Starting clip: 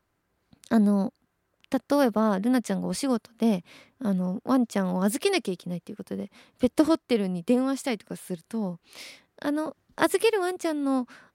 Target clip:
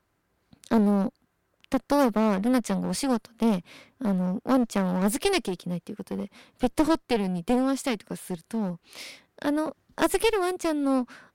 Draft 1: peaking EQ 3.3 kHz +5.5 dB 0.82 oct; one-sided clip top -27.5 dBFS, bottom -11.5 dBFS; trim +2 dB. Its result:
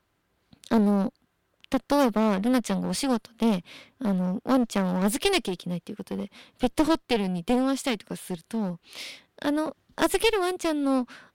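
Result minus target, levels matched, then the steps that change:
4 kHz band +3.5 dB
remove: peaking EQ 3.3 kHz +5.5 dB 0.82 oct

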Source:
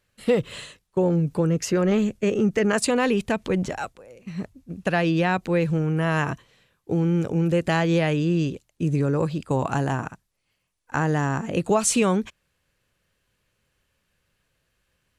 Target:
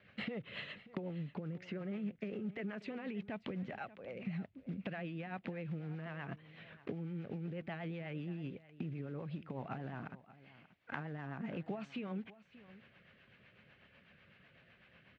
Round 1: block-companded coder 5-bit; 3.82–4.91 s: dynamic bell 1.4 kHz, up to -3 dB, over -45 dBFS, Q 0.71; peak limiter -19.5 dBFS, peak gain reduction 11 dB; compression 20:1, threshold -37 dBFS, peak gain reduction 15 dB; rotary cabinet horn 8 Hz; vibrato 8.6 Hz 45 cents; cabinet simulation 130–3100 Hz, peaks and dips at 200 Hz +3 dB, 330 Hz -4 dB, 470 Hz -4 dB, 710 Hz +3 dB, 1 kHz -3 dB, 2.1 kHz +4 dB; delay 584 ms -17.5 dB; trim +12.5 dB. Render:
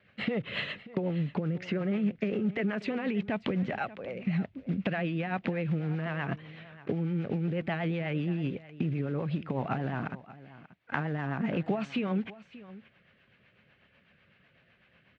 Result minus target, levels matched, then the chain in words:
compression: peak gain reduction -11.5 dB
block-companded coder 5-bit; 3.82–4.91 s: dynamic bell 1.4 kHz, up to -3 dB, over -45 dBFS, Q 0.71; peak limiter -19.5 dBFS, peak gain reduction 11 dB; compression 20:1, threshold -49 dBFS, peak gain reduction 26.5 dB; rotary cabinet horn 8 Hz; vibrato 8.6 Hz 45 cents; cabinet simulation 130–3100 Hz, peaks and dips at 200 Hz +3 dB, 330 Hz -4 dB, 470 Hz -4 dB, 710 Hz +3 dB, 1 kHz -3 dB, 2.1 kHz +4 dB; delay 584 ms -17.5 dB; trim +12.5 dB

